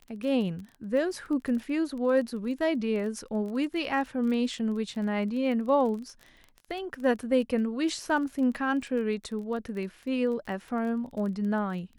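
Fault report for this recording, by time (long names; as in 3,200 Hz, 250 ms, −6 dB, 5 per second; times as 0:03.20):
surface crackle 21 per second −36 dBFS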